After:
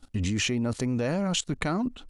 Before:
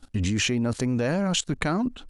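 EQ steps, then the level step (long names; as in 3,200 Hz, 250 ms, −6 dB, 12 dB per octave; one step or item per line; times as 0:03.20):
notch filter 1,600 Hz, Q 14
−2.5 dB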